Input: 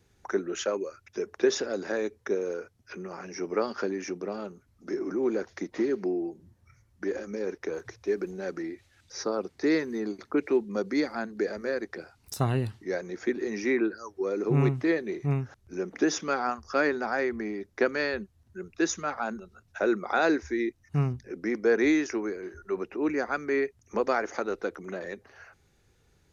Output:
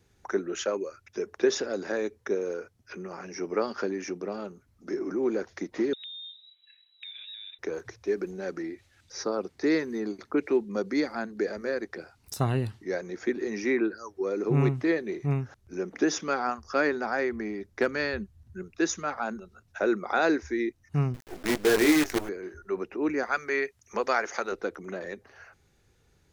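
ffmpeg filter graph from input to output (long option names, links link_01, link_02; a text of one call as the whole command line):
ffmpeg -i in.wav -filter_complex "[0:a]asettb=1/sr,asplit=3[link_01][link_02][link_03];[link_01]atrim=end=5.934[link_04];[link_02]atrim=start=5.93:end=7.59,asetpts=PTS-STARTPTS,afade=type=in:duration=0.004:curve=qsin,afade=type=out:start_time=1.656:duration=0.004:curve=qsin,lowpass=frequency=3400:width_type=q:width=0.5098,lowpass=frequency=3400:width_type=q:width=0.6013,lowpass=frequency=3400:width_type=q:width=0.9,lowpass=frequency=3400:width_type=q:width=2.563,afreqshift=-4000,acompressor=threshold=-39dB:ratio=12:attack=3.2:release=140:knee=1:detection=peak[link_05];[link_03]atrim=start=7.586[link_06];[link_04][link_05]acrossfade=duration=0.004:curve1=hsin:curve2=qsin[link_07];[link_07][link_06]acrossfade=duration=0.004:curve1=qsin:curve2=hsin,asettb=1/sr,asplit=3[link_08][link_09][link_10];[link_08]atrim=end=17.254[link_11];[link_09]atrim=start=17.25:end=18.63,asetpts=PTS-STARTPTS,afade=type=in:duration=0.004:curve=qsin,afade=type=out:start_time=1.376:duration=0.004:curve=qsin,asubboost=boost=6:cutoff=220,asoftclip=type=hard:threshold=-14.5dB[link_12];[link_10]atrim=start=18.626[link_13];[link_11][link_12]acrossfade=duration=0.004:curve1=hsin:curve2=qsin[link_14];[link_14][link_13]acrossfade=duration=0.004:curve1=qsin:curve2=hsin,asettb=1/sr,asplit=3[link_15][link_16][link_17];[link_15]atrim=end=21.144[link_18];[link_16]atrim=start=21.14:end=22.29,asetpts=PTS-STARTPTS,afade=type=in:duration=0.004:curve=qsin,afade=type=out:start_time=1.146:duration=0.004:curve=qsin,asplit=2[link_19][link_20];[link_20]adelay=20,volume=-4.5dB[link_21];[link_19][link_21]amix=inputs=2:normalize=0,atrim=end_sample=50715,acrusher=bits=5:dc=4:mix=0:aa=0.000001[link_22];[link_17]atrim=start=22.286[link_23];[link_18][link_22]acrossfade=duration=0.004:curve1=hsin:curve2=qsin[link_24];[link_24][link_23]acrossfade=duration=0.004:curve1=qsin:curve2=hsin,asettb=1/sr,asplit=3[link_25][link_26][link_27];[link_25]atrim=end=23.234[link_28];[link_26]atrim=start=23.23:end=24.52,asetpts=PTS-STARTPTS,afade=type=in:duration=0.004:curve=qsin,afade=type=out:start_time=1.286:duration=0.004:curve=qsin,tiltshelf=frequency=730:gain=-5.5,bandreject=frequency=300:width=5.8[link_29];[link_27]atrim=start=24.516[link_30];[link_28][link_29]acrossfade=duration=0.004:curve1=hsin:curve2=qsin[link_31];[link_31][link_30]acrossfade=duration=0.004:curve1=qsin:curve2=hsin" out.wav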